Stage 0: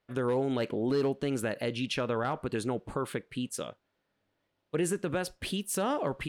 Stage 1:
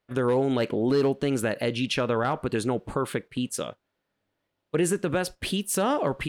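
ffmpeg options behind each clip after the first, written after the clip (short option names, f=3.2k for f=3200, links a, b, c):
-af "agate=range=-6dB:threshold=-43dB:ratio=16:detection=peak,volume=5.5dB"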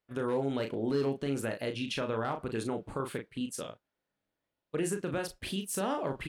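-filter_complex "[0:a]asplit=2[a][b];[b]adelay=36,volume=-6dB[c];[a][c]amix=inputs=2:normalize=0,volume=-8.5dB"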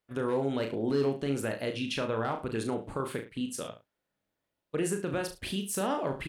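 -af "aecho=1:1:71:0.224,volume=1.5dB"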